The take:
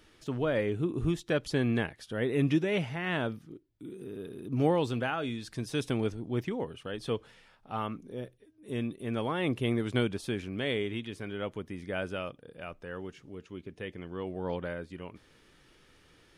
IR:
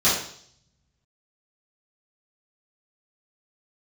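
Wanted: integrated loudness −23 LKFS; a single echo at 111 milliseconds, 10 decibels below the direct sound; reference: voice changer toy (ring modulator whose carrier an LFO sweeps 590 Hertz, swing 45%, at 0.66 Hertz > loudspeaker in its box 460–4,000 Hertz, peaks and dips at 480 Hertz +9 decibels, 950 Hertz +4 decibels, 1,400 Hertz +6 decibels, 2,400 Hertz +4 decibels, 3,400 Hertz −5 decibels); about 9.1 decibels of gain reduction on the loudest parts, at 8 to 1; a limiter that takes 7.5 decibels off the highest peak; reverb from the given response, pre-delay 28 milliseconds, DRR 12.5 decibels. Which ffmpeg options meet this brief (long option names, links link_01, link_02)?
-filter_complex "[0:a]acompressor=threshold=-31dB:ratio=8,alimiter=level_in=5.5dB:limit=-24dB:level=0:latency=1,volume=-5.5dB,aecho=1:1:111:0.316,asplit=2[link_01][link_02];[1:a]atrim=start_sample=2205,adelay=28[link_03];[link_02][link_03]afir=irnorm=-1:irlink=0,volume=-29.5dB[link_04];[link_01][link_04]amix=inputs=2:normalize=0,aeval=exprs='val(0)*sin(2*PI*590*n/s+590*0.45/0.66*sin(2*PI*0.66*n/s))':channel_layout=same,highpass=460,equalizer=frequency=480:width_type=q:width=4:gain=9,equalizer=frequency=950:width_type=q:width=4:gain=4,equalizer=frequency=1400:width_type=q:width=4:gain=6,equalizer=frequency=2400:width_type=q:width=4:gain=4,equalizer=frequency=3400:width_type=q:width=4:gain=-5,lowpass=frequency=4000:width=0.5412,lowpass=frequency=4000:width=1.3066,volume=17.5dB"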